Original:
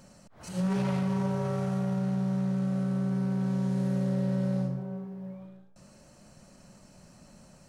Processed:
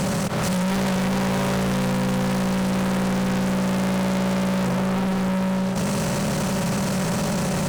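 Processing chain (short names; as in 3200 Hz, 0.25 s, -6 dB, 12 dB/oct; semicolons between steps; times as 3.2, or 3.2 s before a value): per-bin compression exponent 0.4; fuzz box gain 44 dB, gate -54 dBFS; gain -8 dB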